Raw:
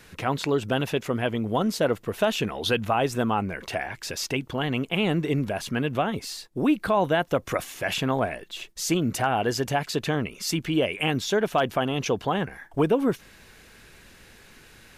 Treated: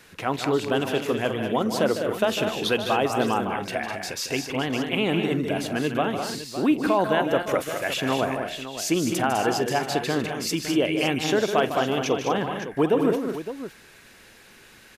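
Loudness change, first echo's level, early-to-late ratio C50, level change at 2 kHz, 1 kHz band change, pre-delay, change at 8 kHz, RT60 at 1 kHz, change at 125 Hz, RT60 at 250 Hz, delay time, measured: +1.5 dB, −19.0 dB, no reverb audible, +1.5 dB, +1.5 dB, no reverb audible, +1.5 dB, no reverb audible, −3.0 dB, no reverb audible, 45 ms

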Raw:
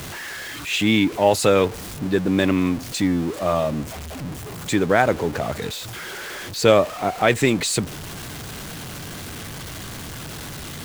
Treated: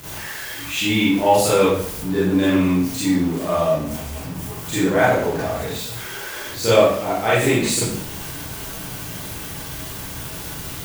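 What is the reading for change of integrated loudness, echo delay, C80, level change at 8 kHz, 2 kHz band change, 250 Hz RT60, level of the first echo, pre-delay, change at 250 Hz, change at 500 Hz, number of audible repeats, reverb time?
+0.5 dB, no echo audible, 4.5 dB, +3.0 dB, +1.0 dB, 0.75 s, no echo audible, 31 ms, +2.0 dB, +1.5 dB, no echo audible, 0.65 s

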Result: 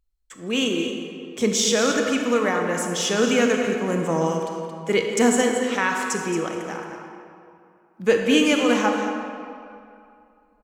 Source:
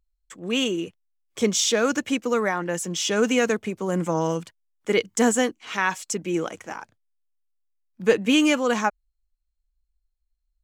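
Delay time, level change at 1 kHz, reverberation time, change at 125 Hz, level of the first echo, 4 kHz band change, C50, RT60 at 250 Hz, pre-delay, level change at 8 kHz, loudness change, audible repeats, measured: 224 ms, +2.5 dB, 2.5 s, +1.5 dB, −10.0 dB, +2.0 dB, 2.5 dB, 2.4 s, 26 ms, +1.5 dB, +1.5 dB, 1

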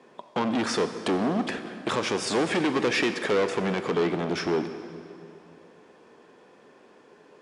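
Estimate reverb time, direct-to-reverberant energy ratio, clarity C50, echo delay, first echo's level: 2.6 s, 9.5 dB, 10.0 dB, no echo audible, no echo audible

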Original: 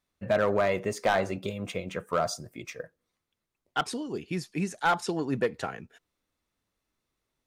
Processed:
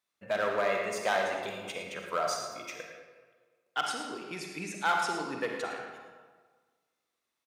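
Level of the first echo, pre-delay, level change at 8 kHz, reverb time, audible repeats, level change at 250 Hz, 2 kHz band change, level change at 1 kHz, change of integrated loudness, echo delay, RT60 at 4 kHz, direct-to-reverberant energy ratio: −10.5 dB, 40 ms, 0.0 dB, 1.5 s, 1, −9.0 dB, 0.0 dB, −1.5 dB, −3.0 dB, 110 ms, 0.95 s, 1.0 dB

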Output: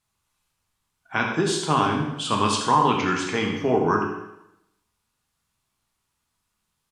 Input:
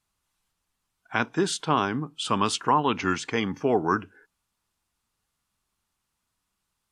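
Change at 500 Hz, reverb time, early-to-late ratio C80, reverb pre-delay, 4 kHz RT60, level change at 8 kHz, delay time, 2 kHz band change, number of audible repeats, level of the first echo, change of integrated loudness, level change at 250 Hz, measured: +3.0 dB, 0.85 s, 5.5 dB, 5 ms, 0.80 s, +3.0 dB, 81 ms, +3.0 dB, 1, −10.0 dB, +3.0 dB, +3.0 dB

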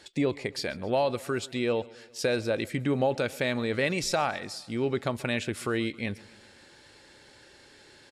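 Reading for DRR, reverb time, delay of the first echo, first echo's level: no reverb audible, no reverb audible, 134 ms, −22.0 dB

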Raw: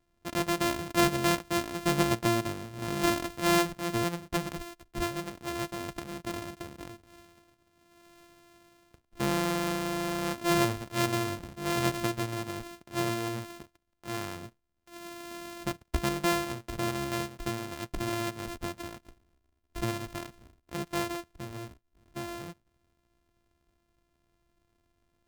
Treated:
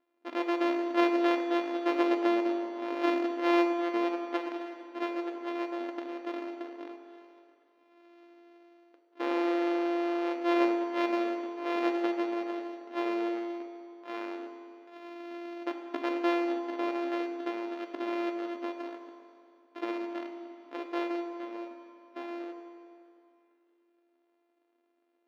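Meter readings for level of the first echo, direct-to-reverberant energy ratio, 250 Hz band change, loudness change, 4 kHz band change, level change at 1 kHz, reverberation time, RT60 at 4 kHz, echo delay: no echo audible, 4.0 dB, +2.0 dB, 0.0 dB, −8.0 dB, −0.5 dB, 2.6 s, 2.3 s, no echo audible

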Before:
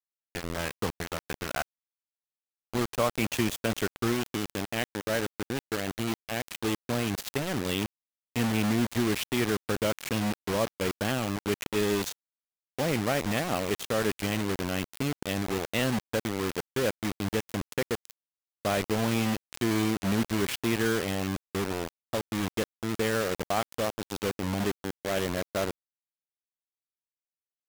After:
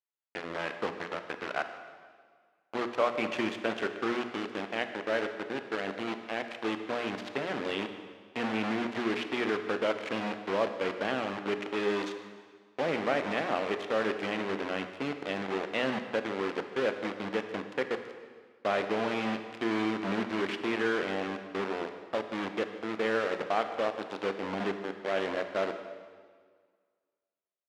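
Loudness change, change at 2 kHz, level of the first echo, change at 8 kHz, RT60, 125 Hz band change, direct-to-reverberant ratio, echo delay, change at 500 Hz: −2.5 dB, −0.5 dB, −19.5 dB, −17.0 dB, 1.8 s, −13.0 dB, 7.5 dB, 151 ms, −0.5 dB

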